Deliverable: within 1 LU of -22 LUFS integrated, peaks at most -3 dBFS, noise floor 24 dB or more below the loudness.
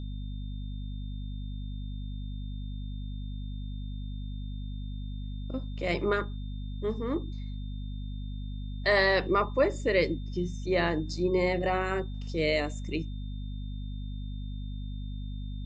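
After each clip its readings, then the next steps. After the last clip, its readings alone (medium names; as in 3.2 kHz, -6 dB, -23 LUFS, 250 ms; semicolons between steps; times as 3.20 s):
hum 50 Hz; highest harmonic 250 Hz; hum level -34 dBFS; steady tone 3.6 kHz; tone level -55 dBFS; loudness -32.5 LUFS; peak level -11.5 dBFS; loudness target -22.0 LUFS
-> hum notches 50/100/150/200/250 Hz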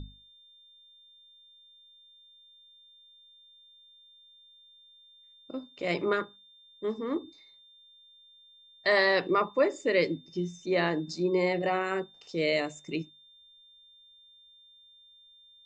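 hum not found; steady tone 3.6 kHz; tone level -55 dBFS
-> band-stop 3.6 kHz, Q 30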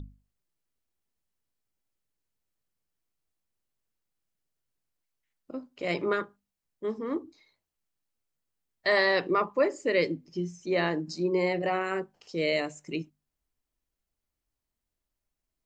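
steady tone not found; loudness -29.0 LUFS; peak level -12.5 dBFS; loudness target -22.0 LUFS
-> trim +7 dB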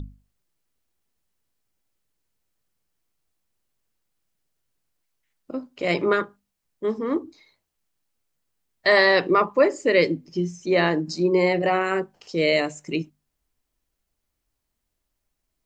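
loudness -22.0 LUFS; peak level -5.5 dBFS; noise floor -80 dBFS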